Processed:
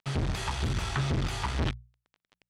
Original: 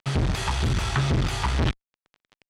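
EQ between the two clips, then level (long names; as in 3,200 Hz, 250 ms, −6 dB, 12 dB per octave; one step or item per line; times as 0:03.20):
mains-hum notches 60/120/180 Hz
−5.5 dB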